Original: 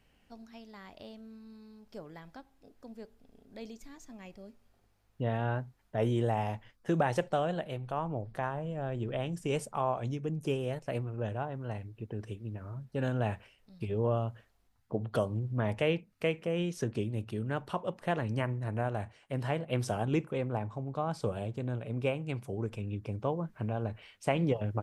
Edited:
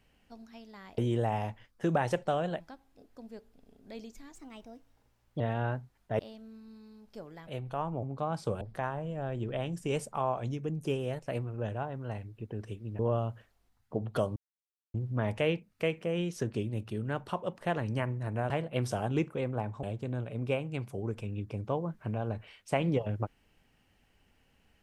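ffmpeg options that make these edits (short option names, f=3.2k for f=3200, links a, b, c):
-filter_complex "[0:a]asplit=13[a][b][c][d][e][f][g][h][i][j][k][l][m];[a]atrim=end=0.982[n];[b]atrim=start=6.028:end=7.652[o];[c]atrim=start=2.258:end=4.014[p];[d]atrim=start=4.01:end=5.24,asetpts=PTS-STARTPTS,asetrate=51597,aresample=44100[q];[e]atrim=start=5.236:end=6.032[r];[f]atrim=start=0.978:end=2.262[s];[g]atrim=start=7.648:end=8.212[t];[h]atrim=start=20.798:end=21.382[u];[i]atrim=start=8.208:end=12.592[v];[j]atrim=start=13.978:end=15.35,asetpts=PTS-STARTPTS,afade=t=out:st=1.368:d=0.004:c=hsin,apad=pad_dur=0.58[w];[k]atrim=start=15.35:end=18.912,asetpts=PTS-STARTPTS,afade=t=in:d=0.004:c=hsin[x];[l]atrim=start=19.468:end=20.802[y];[m]atrim=start=21.378[z];[n][o]acrossfade=d=0.004:c1=hsin:c2=hsin[aa];[aa][p]acrossfade=d=0.004:c1=hsin:c2=hsin[ab];[ab][q]acrossfade=d=0.004:c1=hsin:c2=hsin[ac];[ac][r]acrossfade=d=0.004:c1=hsin:c2=hsin[ad];[ad][s]acrossfade=d=0.004:c1=hsin:c2=hsin[ae];[ae][t]acrossfade=d=0.004:c1=hsin:c2=hsin[af];[af][u]acrossfade=d=0.004:c1=hsin:c2=hsin[ag];[ag][v]acrossfade=d=0.004:c1=hsin:c2=hsin[ah];[w][x]concat=n=2:v=0:a=1[ai];[ah][ai]acrossfade=d=0.004:c1=hsin:c2=hsin[aj];[aj][y]acrossfade=d=0.004:c1=hsin:c2=hsin[ak];[ak][z]acrossfade=d=0.004:c1=hsin:c2=hsin"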